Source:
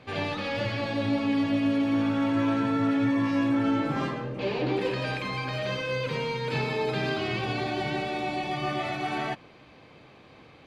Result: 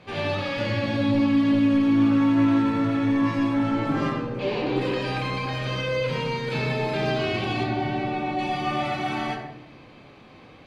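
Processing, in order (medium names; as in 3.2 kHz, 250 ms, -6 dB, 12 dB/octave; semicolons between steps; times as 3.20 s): 7.63–8.39 s: low-pass 2 kHz 6 dB/octave; in parallel at -4.5 dB: sine folder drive 4 dB, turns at -14.5 dBFS; on the sum: simulated room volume 230 m³, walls mixed, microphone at 1 m; trim -7.5 dB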